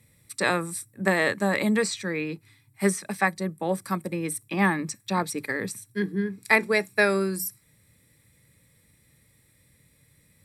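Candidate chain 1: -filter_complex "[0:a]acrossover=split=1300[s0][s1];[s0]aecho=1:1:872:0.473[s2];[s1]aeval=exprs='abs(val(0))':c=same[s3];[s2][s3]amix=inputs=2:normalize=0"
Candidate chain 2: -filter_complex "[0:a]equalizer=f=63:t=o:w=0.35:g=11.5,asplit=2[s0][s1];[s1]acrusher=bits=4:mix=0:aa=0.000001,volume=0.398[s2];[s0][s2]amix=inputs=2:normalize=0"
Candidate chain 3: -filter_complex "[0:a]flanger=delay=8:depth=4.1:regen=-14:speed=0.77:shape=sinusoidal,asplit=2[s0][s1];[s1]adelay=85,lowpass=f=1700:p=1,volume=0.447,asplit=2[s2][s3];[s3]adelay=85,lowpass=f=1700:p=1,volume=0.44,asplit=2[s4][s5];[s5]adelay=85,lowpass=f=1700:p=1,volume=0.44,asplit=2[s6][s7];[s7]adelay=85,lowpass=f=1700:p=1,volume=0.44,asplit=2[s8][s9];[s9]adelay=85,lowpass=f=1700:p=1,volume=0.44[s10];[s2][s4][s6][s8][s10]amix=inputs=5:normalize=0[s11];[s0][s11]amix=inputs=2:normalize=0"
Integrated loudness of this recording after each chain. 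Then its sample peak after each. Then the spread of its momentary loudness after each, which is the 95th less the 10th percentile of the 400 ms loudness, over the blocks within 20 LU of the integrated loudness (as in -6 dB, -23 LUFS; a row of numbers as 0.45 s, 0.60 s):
-28.0 LUFS, -23.5 LUFS, -29.0 LUFS; -4.5 dBFS, -2.5 dBFS, -7.5 dBFS; 8 LU, 9 LU, 9 LU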